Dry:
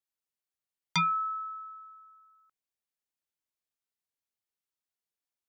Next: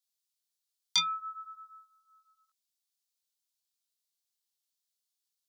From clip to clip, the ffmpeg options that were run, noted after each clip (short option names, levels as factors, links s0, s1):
-af "flanger=delay=18:depth=4.5:speed=0.51,highpass=f=1400:p=1,highshelf=f=2900:t=q:w=1.5:g=10"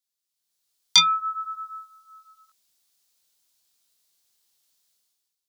-af "dynaudnorm=f=110:g=9:m=5.96"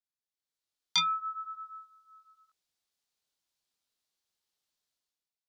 -af "lowpass=f=2600:p=1,volume=0.447"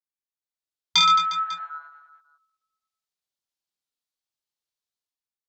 -af "afwtdn=0.00794,aecho=1:1:50|120|218|355.2|547.3:0.631|0.398|0.251|0.158|0.1,volume=2.51"